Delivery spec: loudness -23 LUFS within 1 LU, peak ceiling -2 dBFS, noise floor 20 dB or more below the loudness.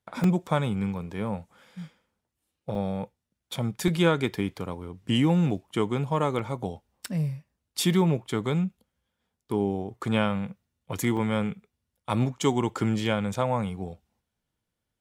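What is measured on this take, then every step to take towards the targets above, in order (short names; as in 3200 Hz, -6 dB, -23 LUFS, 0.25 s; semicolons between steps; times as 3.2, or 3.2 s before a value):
dropouts 6; longest dropout 2.4 ms; loudness -28.0 LUFS; peak -9.0 dBFS; loudness target -23.0 LUFS
-> interpolate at 0.24/2.75/3.88/6.39/7.05/11.17, 2.4 ms; gain +5 dB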